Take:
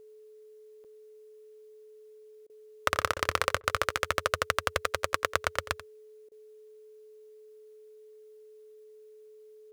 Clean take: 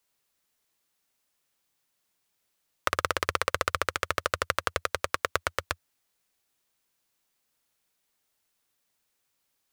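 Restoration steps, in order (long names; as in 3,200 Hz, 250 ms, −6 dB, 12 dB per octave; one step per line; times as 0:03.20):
notch filter 430 Hz, Q 30
repair the gap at 0:00.84/0:03.40, 6.5 ms
repair the gap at 0:02.47/0:03.14/0:03.61/0:06.29, 25 ms
echo removal 87 ms −15.5 dB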